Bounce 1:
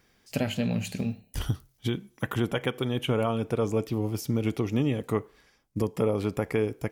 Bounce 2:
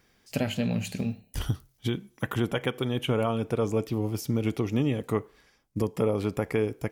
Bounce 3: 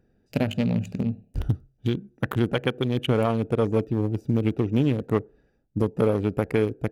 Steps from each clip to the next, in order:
no audible change
local Wiener filter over 41 samples; trim +4.5 dB

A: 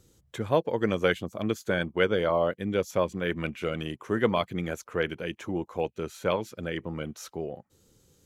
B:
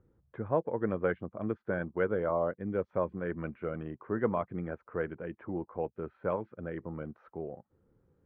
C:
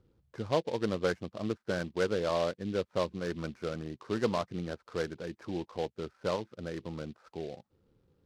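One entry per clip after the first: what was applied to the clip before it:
low-pass 1.6 kHz 24 dB/octave; trim -5 dB
delay time shaken by noise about 3 kHz, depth 0.044 ms

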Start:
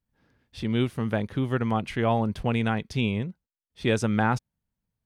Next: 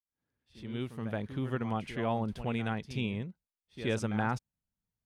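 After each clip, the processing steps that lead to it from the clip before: fade-in on the opening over 1.28 s; reverse echo 74 ms -11.5 dB; trim -8 dB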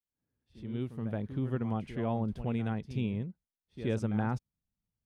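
tilt shelf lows +5.5 dB, about 690 Hz; trim -3 dB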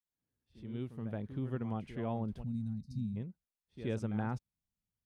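time-frequency box 2.43–3.16 s, 270–3700 Hz -26 dB; trim -4.5 dB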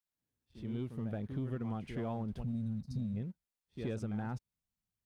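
compression, threshold -37 dBFS, peak gain reduction 7.5 dB; waveshaping leveller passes 1; trim +1 dB

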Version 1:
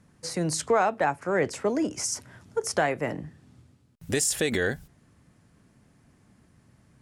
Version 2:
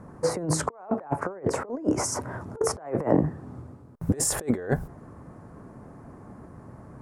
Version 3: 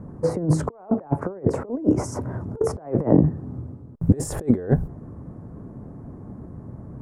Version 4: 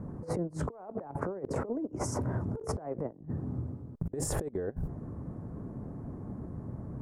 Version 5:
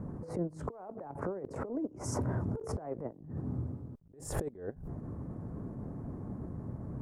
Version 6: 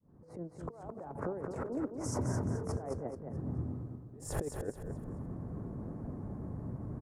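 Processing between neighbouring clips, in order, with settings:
FFT filter 200 Hz 0 dB, 400 Hz +6 dB, 1.1 kHz +6 dB, 3.1 kHz -19 dB, 9.8 kHz -12 dB; compressor with a negative ratio -30 dBFS, ratio -0.5; trim +4.5 dB
tilt shelf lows +9 dB, about 680 Hz
compressor with a negative ratio -27 dBFS, ratio -0.5; trim -7 dB
attacks held to a fixed rise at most 110 dB/s
fade-in on the opening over 1.02 s; on a send: feedback delay 215 ms, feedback 35%, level -6 dB; on the sum: trim -1 dB

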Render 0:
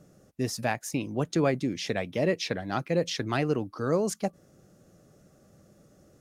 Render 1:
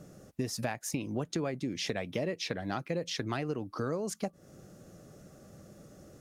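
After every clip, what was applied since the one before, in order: compression 6:1, threshold -36 dBFS, peak gain reduction 15.5 dB; trim +5 dB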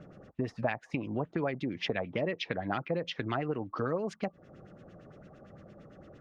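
LFO low-pass sine 8.8 Hz 760–3200 Hz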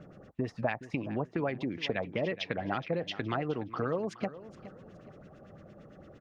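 feedback delay 419 ms, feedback 31%, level -15.5 dB

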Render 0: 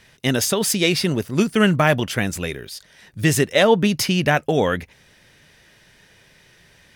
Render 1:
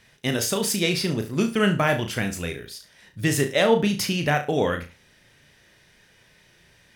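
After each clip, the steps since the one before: flutter echo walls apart 6 m, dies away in 0.3 s; trim -5 dB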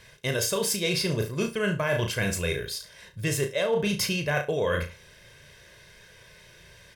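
comb 1.9 ms, depth 65%; hard clipper -7.5 dBFS, distortion -42 dB; reverse; compression 6:1, threshold -27 dBFS, peak gain reduction 14.5 dB; reverse; trim +3.5 dB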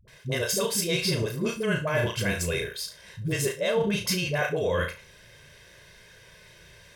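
phase dispersion highs, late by 79 ms, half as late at 400 Hz

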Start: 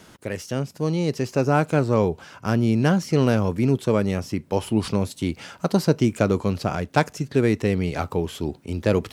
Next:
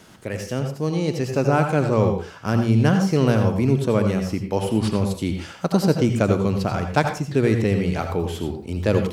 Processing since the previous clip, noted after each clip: reverberation RT60 0.35 s, pre-delay 74 ms, DRR 5 dB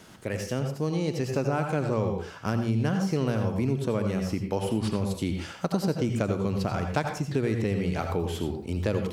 compression 3:1, threshold -22 dBFS, peak gain reduction 8 dB; trim -2 dB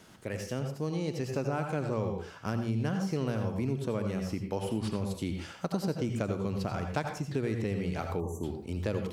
spectral selection erased 8.20–8.44 s, 1.2–5.8 kHz; trim -5 dB

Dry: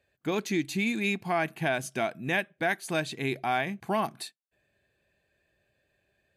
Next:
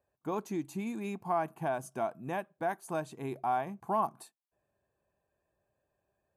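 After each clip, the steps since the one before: graphic EQ 1/2/4 kHz +12/-12/-11 dB; trim -7 dB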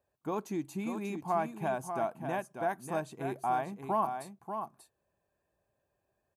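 delay 589 ms -7.5 dB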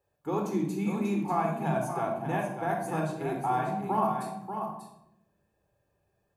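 simulated room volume 2200 m³, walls furnished, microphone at 4.1 m

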